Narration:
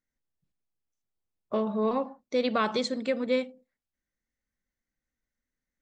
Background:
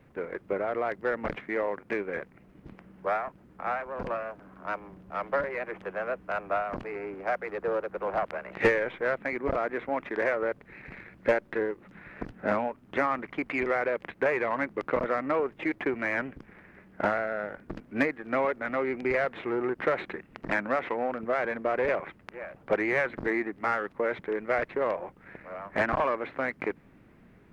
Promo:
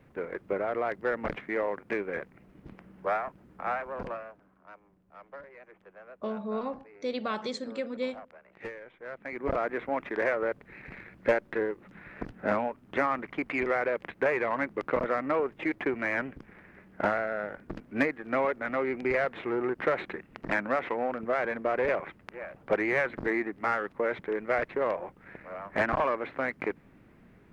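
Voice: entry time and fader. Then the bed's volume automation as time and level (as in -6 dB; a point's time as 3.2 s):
4.70 s, -6.0 dB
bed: 3.94 s -0.5 dB
4.67 s -17.5 dB
8.95 s -17.5 dB
9.5 s -0.5 dB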